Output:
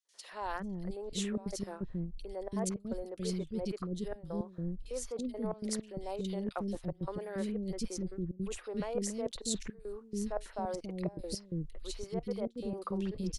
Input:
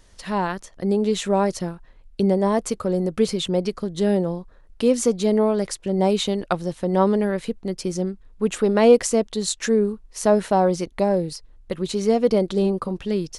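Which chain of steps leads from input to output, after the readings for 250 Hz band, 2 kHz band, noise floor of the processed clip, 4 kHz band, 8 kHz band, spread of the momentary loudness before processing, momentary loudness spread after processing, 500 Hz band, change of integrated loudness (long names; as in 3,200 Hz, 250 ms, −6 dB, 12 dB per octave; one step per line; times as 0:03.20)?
−14.5 dB, −16.5 dB, −56 dBFS, −14.0 dB, −11.5 dB, 9 LU, 5 LU, −19.0 dB, −16.5 dB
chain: gate pattern ".xxxxxx.xxxx.xx." 173 BPM −24 dB
reversed playback
downward compressor 6 to 1, threshold −26 dBFS, peak gain reduction 16 dB
reversed playback
low-shelf EQ 80 Hz +11.5 dB
three-band delay without the direct sound highs, mids, lows 50/330 ms, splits 390/2,400 Hz
level −6 dB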